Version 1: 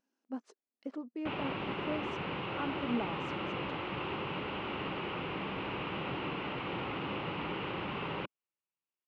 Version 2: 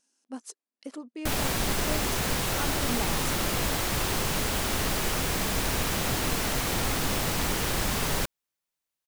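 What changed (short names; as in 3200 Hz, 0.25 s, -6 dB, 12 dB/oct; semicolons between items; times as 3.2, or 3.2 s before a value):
background: remove speaker cabinet 210–3100 Hz, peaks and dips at 240 Hz -8 dB, 460 Hz -4 dB, 670 Hz -9 dB, 1700 Hz -8 dB, 2800 Hz +8 dB; master: remove tape spacing loss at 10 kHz 35 dB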